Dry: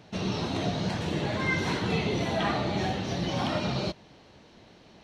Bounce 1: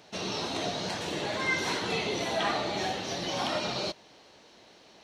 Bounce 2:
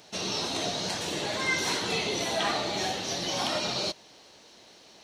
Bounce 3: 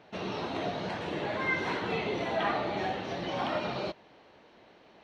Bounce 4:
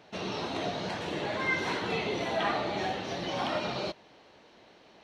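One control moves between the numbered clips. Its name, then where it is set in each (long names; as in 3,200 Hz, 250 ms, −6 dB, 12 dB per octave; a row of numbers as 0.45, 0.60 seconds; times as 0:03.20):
bass and treble, treble: +6, +14, −14, −5 decibels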